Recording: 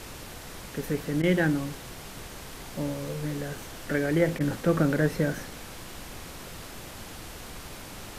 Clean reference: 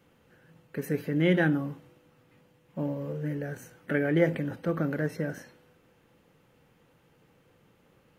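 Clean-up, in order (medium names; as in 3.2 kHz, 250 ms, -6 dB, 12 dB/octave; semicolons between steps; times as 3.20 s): interpolate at 1.22/4.39 s, 12 ms; noise print and reduce 22 dB; trim 0 dB, from 4.39 s -5.5 dB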